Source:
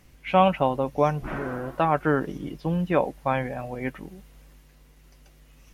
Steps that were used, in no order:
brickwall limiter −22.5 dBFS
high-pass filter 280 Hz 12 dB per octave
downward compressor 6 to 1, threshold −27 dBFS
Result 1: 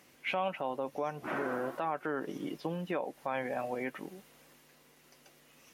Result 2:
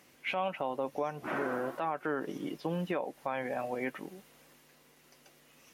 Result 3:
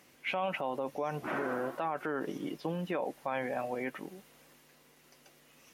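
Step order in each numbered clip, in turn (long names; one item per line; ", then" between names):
downward compressor, then brickwall limiter, then high-pass filter
high-pass filter, then downward compressor, then brickwall limiter
brickwall limiter, then high-pass filter, then downward compressor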